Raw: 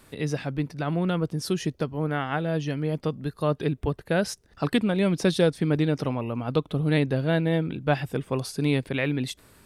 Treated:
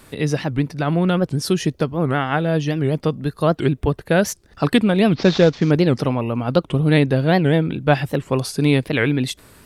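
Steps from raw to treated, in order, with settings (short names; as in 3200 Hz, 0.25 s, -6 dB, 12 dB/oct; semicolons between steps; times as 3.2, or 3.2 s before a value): 5.16–5.71 CVSD 32 kbps; record warp 78 rpm, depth 250 cents; gain +7.5 dB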